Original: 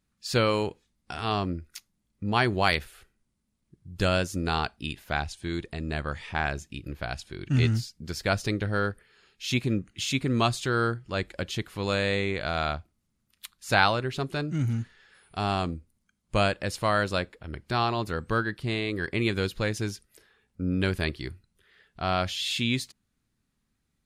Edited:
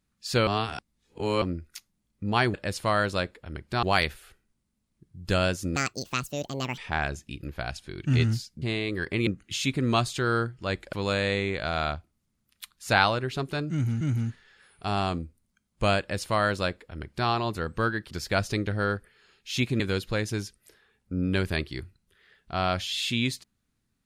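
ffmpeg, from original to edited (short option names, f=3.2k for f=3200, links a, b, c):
-filter_complex "[0:a]asplit=13[a][b][c][d][e][f][g][h][i][j][k][l][m];[a]atrim=end=0.472[n];[b]atrim=start=0.468:end=1.422,asetpts=PTS-STARTPTS,areverse[o];[c]atrim=start=1.418:end=2.542[p];[d]atrim=start=16.518:end=17.812[q];[e]atrim=start=2.538:end=4.474[r];[f]atrim=start=4.47:end=6.21,asetpts=PTS-STARTPTS,asetrate=75411,aresample=44100[s];[g]atrim=start=6.206:end=8.052[t];[h]atrim=start=18.628:end=19.282[u];[i]atrim=start=9.738:end=11.402[v];[j]atrim=start=11.738:end=14.822[w];[k]atrim=start=14.528:end=18.632[x];[l]atrim=start=8.048:end=9.742[y];[m]atrim=start=19.278[z];[n][o]acrossfade=d=0.004:c1=hsin:c2=hsin[aa];[aa][p]acrossfade=d=0.004:c1=hsin:c2=hsin[ab];[ab][q]acrossfade=d=0.004:c1=hsin:c2=hsin[ac];[ac][r]acrossfade=d=0.004:c1=hsin:c2=hsin[ad];[ad][s]acrossfade=d=0.004:c1=hsin:c2=hsin[ae];[ae][t]acrossfade=d=0.004:c1=hsin:c2=hsin[af];[af][u]acrossfade=d=0.004:c1=hsin:c2=hsin[ag];[ag][v]acrossfade=d=0.004:c1=hsin:c2=hsin[ah];[ah][w]acrossfade=d=0.004:c1=hsin:c2=hsin[ai];[ai][x]acrossfade=d=0.004:c1=hsin:c2=hsin[aj];[aj][y]acrossfade=d=0.004:c1=hsin:c2=hsin[ak];[ak][z]acrossfade=d=0.004:c1=hsin:c2=hsin"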